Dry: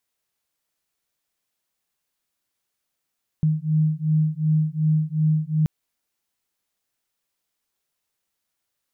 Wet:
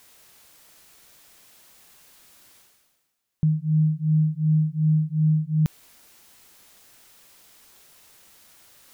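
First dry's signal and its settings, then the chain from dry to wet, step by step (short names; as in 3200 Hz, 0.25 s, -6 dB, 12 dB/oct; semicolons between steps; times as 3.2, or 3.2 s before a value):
beating tones 154 Hz, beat 2.7 Hz, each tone -21 dBFS 2.23 s
reverse; upward compressor, threshold -32 dBFS; reverse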